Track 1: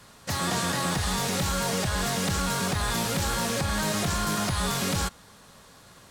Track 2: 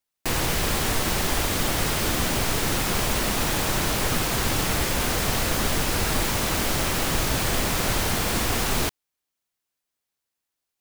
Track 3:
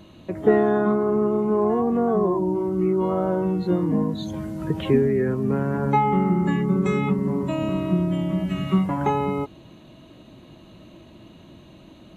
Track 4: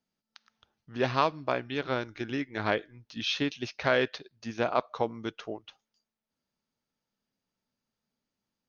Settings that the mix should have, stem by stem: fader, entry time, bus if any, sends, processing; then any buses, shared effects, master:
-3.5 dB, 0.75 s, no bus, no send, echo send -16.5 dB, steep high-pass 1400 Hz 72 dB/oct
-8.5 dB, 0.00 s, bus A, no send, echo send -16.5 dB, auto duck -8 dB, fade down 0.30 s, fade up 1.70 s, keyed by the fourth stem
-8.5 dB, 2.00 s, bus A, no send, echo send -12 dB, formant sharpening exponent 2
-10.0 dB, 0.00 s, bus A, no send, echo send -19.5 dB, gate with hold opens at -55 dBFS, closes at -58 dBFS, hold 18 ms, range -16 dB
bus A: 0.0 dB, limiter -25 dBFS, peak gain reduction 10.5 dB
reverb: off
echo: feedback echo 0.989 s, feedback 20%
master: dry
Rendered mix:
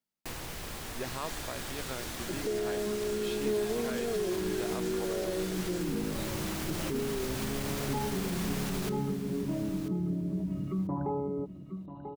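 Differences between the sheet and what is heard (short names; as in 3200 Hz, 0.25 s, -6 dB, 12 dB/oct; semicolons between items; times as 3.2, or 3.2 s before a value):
stem 1 -3.5 dB -> -15.5 dB; stem 4: missing gate with hold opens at -55 dBFS, closes at -58 dBFS, hold 18 ms, range -16 dB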